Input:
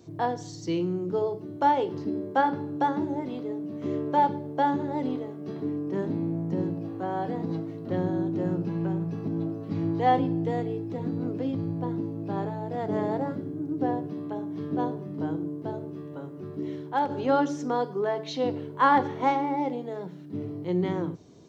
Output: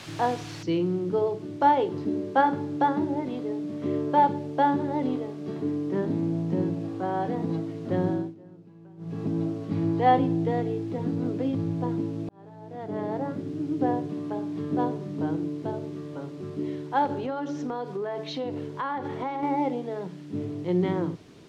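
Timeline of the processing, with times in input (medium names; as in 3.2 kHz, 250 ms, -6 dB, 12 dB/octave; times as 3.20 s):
0.63 s: noise floor step -40 dB -56 dB
8.11–9.21 s: dip -22.5 dB, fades 0.24 s
12.29–13.62 s: fade in
17.14–19.43 s: compression 8:1, threshold -29 dBFS
whole clip: low-pass 4.4 kHz 12 dB/octave; trim +2 dB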